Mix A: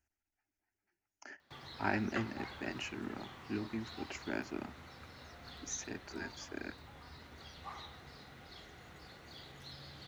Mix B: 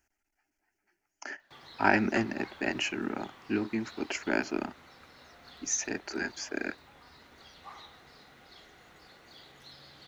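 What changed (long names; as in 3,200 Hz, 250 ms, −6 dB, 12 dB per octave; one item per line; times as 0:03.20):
speech +11.0 dB
master: add parametric band 87 Hz −10 dB 2 octaves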